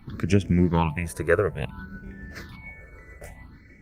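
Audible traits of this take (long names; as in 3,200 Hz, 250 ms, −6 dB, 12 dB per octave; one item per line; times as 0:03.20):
phaser sweep stages 6, 0.58 Hz, lowest notch 210–1,100 Hz
tremolo triangle 6.8 Hz, depth 40%
Opus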